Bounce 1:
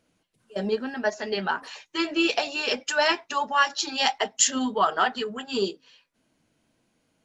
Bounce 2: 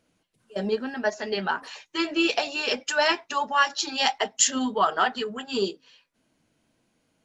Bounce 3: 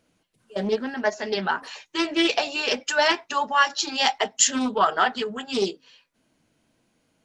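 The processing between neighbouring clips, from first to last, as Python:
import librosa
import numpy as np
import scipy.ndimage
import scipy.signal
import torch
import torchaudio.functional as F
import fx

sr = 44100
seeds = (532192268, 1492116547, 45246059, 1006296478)

y1 = x
y2 = fx.doppler_dist(y1, sr, depth_ms=0.21)
y2 = F.gain(torch.from_numpy(y2), 2.0).numpy()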